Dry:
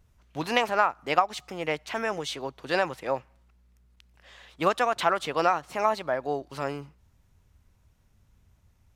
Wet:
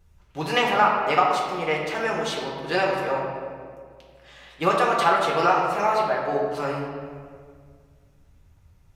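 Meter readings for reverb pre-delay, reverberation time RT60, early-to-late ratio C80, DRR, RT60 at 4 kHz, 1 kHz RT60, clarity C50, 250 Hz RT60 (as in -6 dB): 3 ms, 1.9 s, 3.0 dB, -3.5 dB, 1.2 s, 1.8 s, 1.5 dB, 2.4 s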